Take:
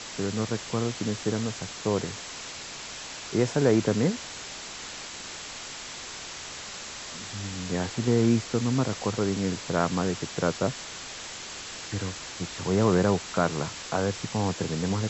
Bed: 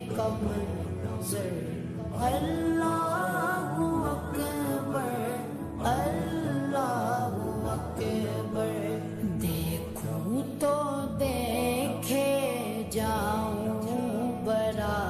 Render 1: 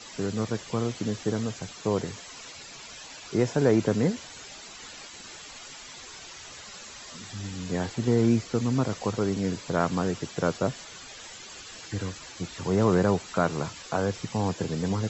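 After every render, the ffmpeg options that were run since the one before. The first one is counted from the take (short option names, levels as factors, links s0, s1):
-af "afftdn=nr=11:nf=-40"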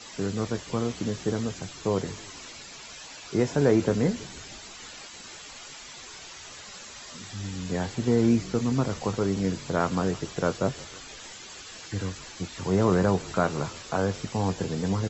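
-filter_complex "[0:a]asplit=2[s0][s1];[s1]adelay=21,volume=0.237[s2];[s0][s2]amix=inputs=2:normalize=0,asplit=6[s3][s4][s5][s6][s7][s8];[s4]adelay=159,afreqshift=-47,volume=0.0891[s9];[s5]adelay=318,afreqshift=-94,volume=0.0537[s10];[s6]adelay=477,afreqshift=-141,volume=0.032[s11];[s7]adelay=636,afreqshift=-188,volume=0.0193[s12];[s8]adelay=795,afreqshift=-235,volume=0.0116[s13];[s3][s9][s10][s11][s12][s13]amix=inputs=6:normalize=0"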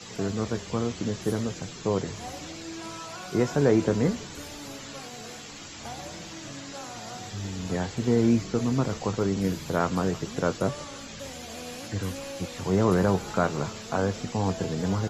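-filter_complex "[1:a]volume=0.237[s0];[0:a][s0]amix=inputs=2:normalize=0"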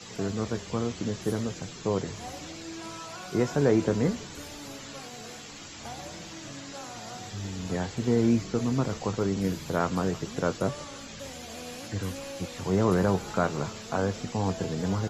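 -af "volume=0.841"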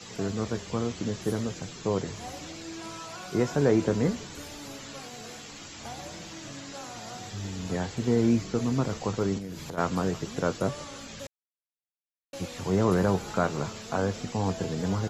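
-filter_complex "[0:a]asplit=3[s0][s1][s2];[s0]afade=t=out:st=9.37:d=0.02[s3];[s1]acompressor=threshold=0.0224:ratio=10:attack=3.2:release=140:knee=1:detection=peak,afade=t=in:st=9.37:d=0.02,afade=t=out:st=9.77:d=0.02[s4];[s2]afade=t=in:st=9.77:d=0.02[s5];[s3][s4][s5]amix=inputs=3:normalize=0,asplit=3[s6][s7][s8];[s6]atrim=end=11.27,asetpts=PTS-STARTPTS,afade=t=out:st=11.266:d=0.004:c=hsin[s9];[s7]atrim=start=11.27:end=12.33,asetpts=PTS-STARTPTS,volume=0[s10];[s8]atrim=start=12.33,asetpts=PTS-STARTPTS,afade=t=in:d=0.004:c=hsin[s11];[s9][s10][s11]concat=n=3:v=0:a=1"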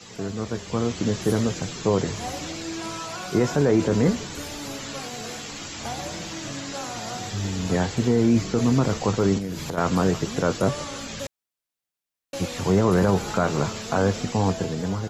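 -af "dynaudnorm=f=230:g=7:m=2.51,alimiter=limit=0.299:level=0:latency=1:release=14"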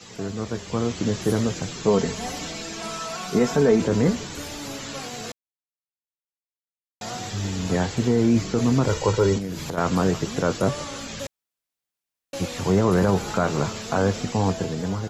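-filter_complex "[0:a]asettb=1/sr,asplit=3[s0][s1][s2];[s0]atrim=end=1.874[s3];[s1]atrim=start=1.87:end=3.82,asetpts=PTS-STARTPTS,afade=t=in:d=0.004:c=qsin,afade=t=out:st=1.946:d=0.004:c=qsin,aecho=1:1:4.5:0.64,atrim=end_sample=85995[s4];[s2]atrim=start=3.816[s5];[s3][s4]acrossfade=d=0.004:c1=hsin:c2=qsin[s6];[s6][s5]acrossfade=d=0.004:c1=qsin:c2=hsin,asettb=1/sr,asplit=3[s7][s8][s9];[s7]atrim=end=8.874[s10];[s8]atrim=start=8.87:end=9.36,asetpts=PTS-STARTPTS,afade=t=in:d=0.004:c=qsin,afade=t=out:st=0.486:d=0.004:c=qsin,aecho=1:1:2.1:0.73,atrim=end_sample=21609[s11];[s9]atrim=start=9.356[s12];[s10][s11]acrossfade=d=0.004:c1=hsin:c2=qsin[s13];[s13][s12]acrossfade=d=0.004:c1=qsin:c2=hsin,asplit=3[s14][s15][s16];[s14]atrim=end=5.32,asetpts=PTS-STARTPTS,afade=t=out:st=5.316:d=0.004:c=hsin[s17];[s15]atrim=start=5.32:end=7.01,asetpts=PTS-STARTPTS,volume=0[s18];[s16]atrim=start=7.01,asetpts=PTS-STARTPTS,afade=t=in:d=0.004:c=hsin[s19];[s17][s18][s19]concat=n=3:v=0:a=1"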